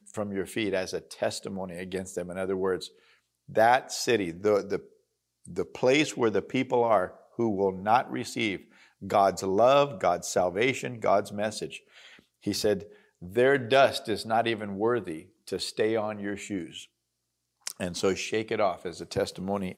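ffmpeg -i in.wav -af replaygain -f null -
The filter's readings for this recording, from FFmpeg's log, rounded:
track_gain = +6.1 dB
track_peak = 0.295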